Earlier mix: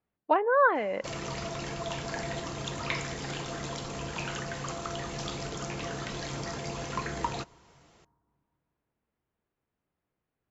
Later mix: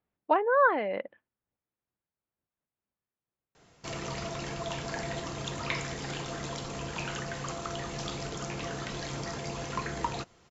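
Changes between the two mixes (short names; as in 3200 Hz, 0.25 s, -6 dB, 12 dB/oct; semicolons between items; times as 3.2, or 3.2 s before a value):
background: entry +2.80 s; reverb: off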